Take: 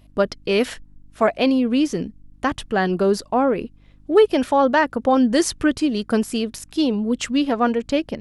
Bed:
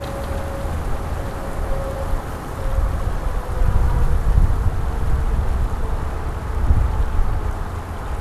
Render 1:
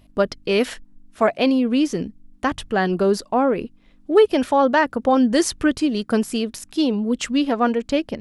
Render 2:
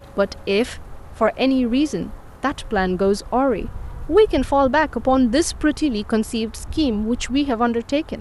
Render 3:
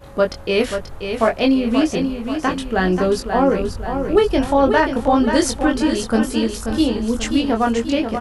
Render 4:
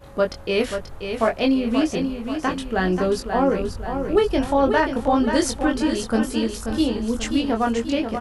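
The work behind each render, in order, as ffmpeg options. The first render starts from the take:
-af "bandreject=f=50:t=h:w=4,bandreject=f=100:t=h:w=4,bandreject=f=150:t=h:w=4"
-filter_complex "[1:a]volume=-15dB[a];[0:a][a]amix=inputs=2:normalize=0"
-filter_complex "[0:a]asplit=2[a][b];[b]adelay=22,volume=-4dB[c];[a][c]amix=inputs=2:normalize=0,aecho=1:1:534|1068|1602|2136|2670:0.422|0.198|0.0932|0.0438|0.0206"
-af "volume=-3.5dB"

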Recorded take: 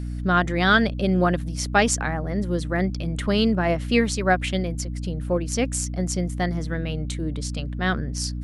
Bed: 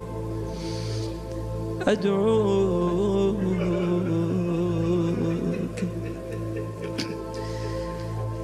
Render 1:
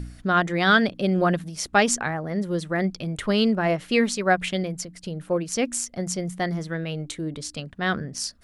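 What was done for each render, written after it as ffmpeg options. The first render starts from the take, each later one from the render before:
-af "bandreject=f=60:t=h:w=4,bandreject=f=120:t=h:w=4,bandreject=f=180:t=h:w=4,bandreject=f=240:t=h:w=4,bandreject=f=300:t=h:w=4"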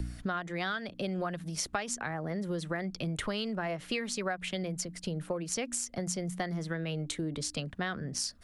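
-filter_complex "[0:a]acrossover=split=150|500|2100[a][b][c][d];[b]alimiter=level_in=2dB:limit=-24dB:level=0:latency=1,volume=-2dB[e];[a][e][c][d]amix=inputs=4:normalize=0,acompressor=threshold=-30dB:ratio=16"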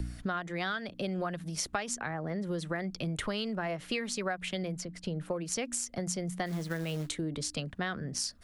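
-filter_complex "[0:a]asettb=1/sr,asplit=3[a][b][c];[a]atrim=end=2.004[d];[b]atrim=start=2:end=2.47,asetpts=PTS-STARTPTS,afade=t=in:d=0.004:c=qsin,afade=t=out:st=0.466:d=0.004:c=qsin,highshelf=f=8.4k:g=-11[e];[c]atrim=start=2.466[f];[d][e]acrossfade=d=0.004:c1=hsin:c2=qsin[g];[g][f]acrossfade=d=0.004:c1=qsin:c2=hsin,asettb=1/sr,asplit=3[h][i][j];[h]atrim=end=4.784[k];[i]atrim=start=4.78:end=5.26,asetpts=PTS-STARTPTS,afade=t=in:d=0.004:c=qsin,afade=t=out:st=0.476:d=0.004:c=qsin,highshelf=f=6.9k:g=-11.5[l];[j]atrim=start=5.256[m];[k][l]acrossfade=d=0.004:c1=hsin:c2=qsin[n];[n][m]acrossfade=d=0.004:c1=qsin:c2=hsin,asplit=3[o][p][q];[o]afade=t=out:st=6.45:d=0.02[r];[p]acrusher=bits=4:mode=log:mix=0:aa=0.000001,afade=t=in:st=6.45:d=0.02,afade=t=out:st=7.08:d=0.02[s];[q]afade=t=in:st=7.08:d=0.02[t];[r][s][t]amix=inputs=3:normalize=0"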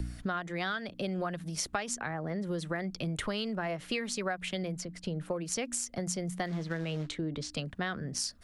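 -filter_complex "[0:a]asettb=1/sr,asplit=3[a][b][c];[a]atrim=end=6.464[d];[b]atrim=start=6.46:end=7.52,asetpts=PTS-STARTPTS,afade=t=in:d=0.004:c=qsin,afade=t=out:st=1.056:d=0.004:c=qsin,lowpass=4.8k[e];[c]atrim=start=7.516[f];[d][e]acrossfade=d=0.004:c1=hsin:c2=qsin[g];[g][f]acrossfade=d=0.004:c1=qsin:c2=hsin"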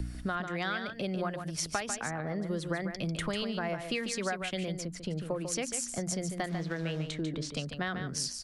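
-af "aecho=1:1:146:0.422"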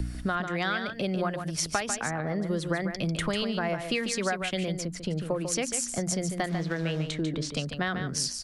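-af "volume=4.5dB"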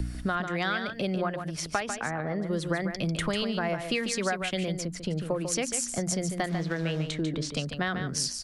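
-filter_complex "[0:a]asettb=1/sr,asplit=3[a][b][c];[a]atrim=end=1.184[d];[b]atrim=start=1.18:end=2.53,asetpts=PTS-STARTPTS,afade=t=in:d=0.004:c=qsin,afade=t=out:st=1.346:d=0.004:c=qsin,bass=f=250:g=-2,treble=f=4k:g=-7[e];[c]atrim=start=2.526[f];[d][e]acrossfade=d=0.004:c1=hsin:c2=qsin[g];[g][f]acrossfade=d=0.004:c1=qsin:c2=hsin"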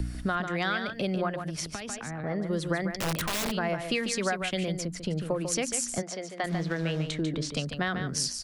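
-filter_complex "[0:a]asettb=1/sr,asplit=3[a][b][c];[a]atrim=end=1.614[d];[b]atrim=start=1.61:end=2.24,asetpts=PTS-STARTPTS,afade=t=in:d=0.004:c=qsin,afade=t=out:st=0.626:d=0.004:c=qsin,acrossover=split=300|3000[e][f][g];[f]acompressor=threshold=-38dB:ratio=6:attack=3.2:release=140:knee=2.83:detection=peak[h];[e][h][g]amix=inputs=3:normalize=0[i];[c]atrim=start=2.236[j];[d][i]acrossfade=d=0.004:c1=hsin:c2=qsin[k];[k][j]acrossfade=d=0.004:c1=qsin:c2=hsin,asplit=3[l][m][n];[l]afade=t=out:st=2.96:d=0.02[o];[m]aeval=exprs='(mod(15.8*val(0)+1,2)-1)/15.8':c=same,afade=t=in:st=2.96:d=0.02,afade=t=out:st=3.5:d=0.02[p];[n]afade=t=in:st=3.5:d=0.02[q];[o][p][q]amix=inputs=3:normalize=0,asplit=3[r][s][t];[r]afade=t=out:st=6.01:d=0.02[u];[s]highpass=450,lowpass=4.4k,afade=t=in:st=6.01:d=0.02,afade=t=out:st=6.43:d=0.02[v];[t]afade=t=in:st=6.43:d=0.02[w];[u][v][w]amix=inputs=3:normalize=0"

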